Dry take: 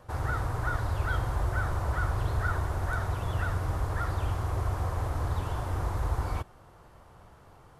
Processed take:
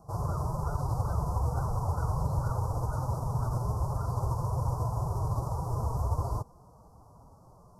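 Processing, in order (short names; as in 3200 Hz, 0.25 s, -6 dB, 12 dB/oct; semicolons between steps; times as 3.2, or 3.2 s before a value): vibrato 5.7 Hz 27 cents; formant-preserving pitch shift +5 st; elliptic band-stop 1100–5200 Hz, stop band 50 dB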